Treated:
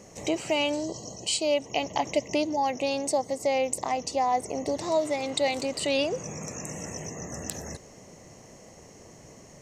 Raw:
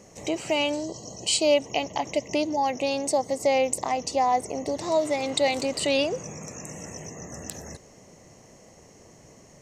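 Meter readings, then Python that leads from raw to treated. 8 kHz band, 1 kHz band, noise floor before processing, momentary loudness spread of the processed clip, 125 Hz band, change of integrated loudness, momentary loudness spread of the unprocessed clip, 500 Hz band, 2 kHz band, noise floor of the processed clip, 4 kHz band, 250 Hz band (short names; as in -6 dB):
-2.0 dB, -2.0 dB, -52 dBFS, 10 LU, 0.0 dB, -3.0 dB, 15 LU, -2.5 dB, -2.0 dB, -50 dBFS, -2.5 dB, -1.5 dB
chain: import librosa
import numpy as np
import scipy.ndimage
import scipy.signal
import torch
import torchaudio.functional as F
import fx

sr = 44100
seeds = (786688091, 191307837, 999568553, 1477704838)

y = fx.rider(x, sr, range_db=4, speed_s=0.5)
y = F.gain(torch.from_numpy(y), -2.0).numpy()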